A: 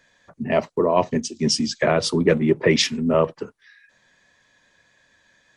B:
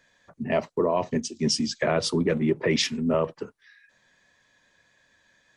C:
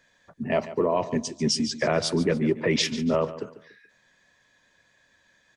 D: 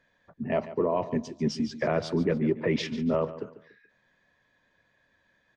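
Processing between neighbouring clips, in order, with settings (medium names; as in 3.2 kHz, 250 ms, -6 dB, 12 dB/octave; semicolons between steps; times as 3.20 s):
peak limiter -9.5 dBFS, peak gain reduction 5.5 dB; trim -3.5 dB
feedback delay 144 ms, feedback 32%, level -14.5 dB
median filter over 3 samples; tape spacing loss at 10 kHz 21 dB; trim -1.5 dB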